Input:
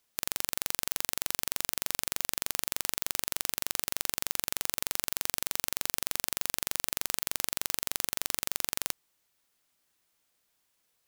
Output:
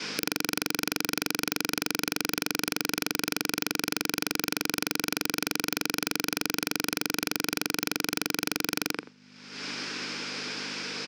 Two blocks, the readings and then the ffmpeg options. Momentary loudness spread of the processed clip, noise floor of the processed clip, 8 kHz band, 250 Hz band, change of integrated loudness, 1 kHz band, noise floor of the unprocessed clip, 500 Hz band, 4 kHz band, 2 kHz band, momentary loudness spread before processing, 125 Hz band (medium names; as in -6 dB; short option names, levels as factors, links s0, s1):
5 LU, -55 dBFS, -0.5 dB, +18.0 dB, +1.5 dB, +6.5 dB, -76 dBFS, +10.0 dB, +5.5 dB, +9.0 dB, 0 LU, +8.5 dB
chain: -filter_complex "[0:a]acompressor=mode=upward:threshold=0.00631:ratio=2.5,asplit=2[s0][s1];[s1]adelay=85,lowpass=f=960:p=1,volume=0.596,asplit=2[s2][s3];[s3]adelay=85,lowpass=f=960:p=1,volume=0.16,asplit=2[s4][s5];[s5]adelay=85,lowpass=f=960:p=1,volume=0.16[s6];[s2][s4][s6]amix=inputs=3:normalize=0[s7];[s0][s7]amix=inputs=2:normalize=0,aeval=exprs='val(0)+0.000891*(sin(2*PI*50*n/s)+sin(2*PI*2*50*n/s)/2+sin(2*PI*3*50*n/s)/3+sin(2*PI*4*50*n/s)/4+sin(2*PI*5*50*n/s)/5)':c=same,agate=range=0.0224:threshold=0.00224:ratio=3:detection=peak,highpass=f=180:w=0.5412,highpass=f=180:w=1.3066,equalizer=f=300:t=q:w=4:g=10,equalizer=f=450:t=q:w=4:g=8,equalizer=f=660:t=q:w=4:g=-6,equalizer=f=1500:t=q:w=4:g=7,equalizer=f=2400:t=q:w=4:g=8,equalizer=f=5100:t=q:w=4:g=10,lowpass=f=5500:w=0.5412,lowpass=f=5500:w=1.3066,acompressor=threshold=0.00447:ratio=4,aeval=exprs='0.119*sin(PI/2*8.91*val(0)/0.119)':c=same,volume=1.68"